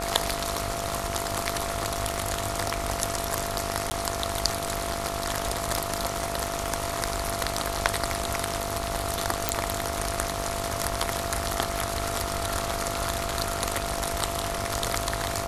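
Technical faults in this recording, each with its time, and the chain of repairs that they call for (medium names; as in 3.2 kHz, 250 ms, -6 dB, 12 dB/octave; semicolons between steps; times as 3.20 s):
buzz 50 Hz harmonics 28 -35 dBFS
crackle 48 per s -36 dBFS
whine 680 Hz -33 dBFS
3.90–3.91 s: dropout 10 ms
9.49 s: pop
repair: de-click; de-hum 50 Hz, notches 28; band-stop 680 Hz, Q 30; interpolate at 3.90 s, 10 ms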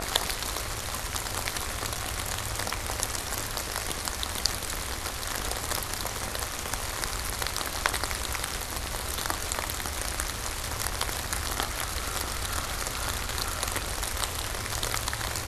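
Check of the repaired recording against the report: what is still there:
9.49 s: pop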